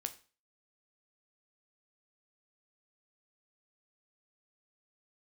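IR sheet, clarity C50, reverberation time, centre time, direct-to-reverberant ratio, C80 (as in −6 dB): 15.5 dB, 0.35 s, 6 ms, 8.0 dB, 19.5 dB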